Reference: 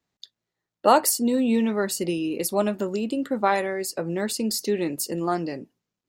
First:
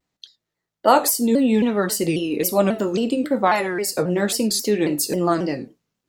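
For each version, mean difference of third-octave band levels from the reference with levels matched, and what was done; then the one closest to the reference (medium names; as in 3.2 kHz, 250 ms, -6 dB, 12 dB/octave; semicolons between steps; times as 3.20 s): 4.0 dB: in parallel at +1 dB: gain riding 0.5 s; on the sum: gated-style reverb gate 130 ms falling, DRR 8 dB; vibrato with a chosen wave saw down 3.7 Hz, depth 160 cents; trim -2.5 dB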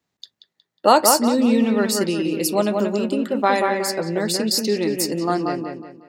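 5.5 dB: high-pass 69 Hz; dynamic bell 4.8 kHz, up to +6 dB, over -46 dBFS, Q 1.7; on a send: feedback echo behind a low-pass 182 ms, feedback 35%, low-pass 2.9 kHz, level -4 dB; on the sum: trim +3 dB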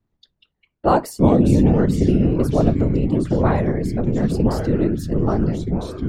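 12.0 dB: whisper effect; ever faster or slower copies 132 ms, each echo -4 st, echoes 3, each echo -6 dB; tilt EQ -4 dB/octave; trim -1 dB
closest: first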